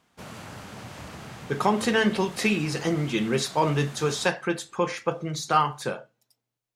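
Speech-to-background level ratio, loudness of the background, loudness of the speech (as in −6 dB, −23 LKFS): 16.5 dB, −42.5 LKFS, −26.0 LKFS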